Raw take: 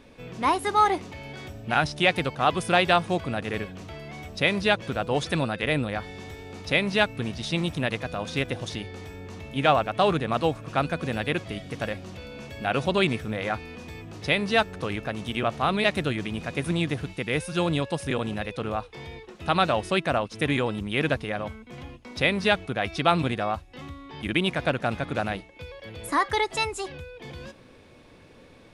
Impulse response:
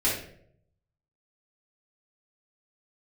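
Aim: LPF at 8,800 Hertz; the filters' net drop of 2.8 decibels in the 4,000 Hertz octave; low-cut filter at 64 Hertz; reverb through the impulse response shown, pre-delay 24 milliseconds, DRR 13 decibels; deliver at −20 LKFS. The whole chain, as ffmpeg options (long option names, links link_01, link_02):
-filter_complex "[0:a]highpass=64,lowpass=8800,equalizer=frequency=4000:width_type=o:gain=-3.5,asplit=2[link_01][link_02];[1:a]atrim=start_sample=2205,adelay=24[link_03];[link_02][link_03]afir=irnorm=-1:irlink=0,volume=-24.5dB[link_04];[link_01][link_04]amix=inputs=2:normalize=0,volume=6.5dB"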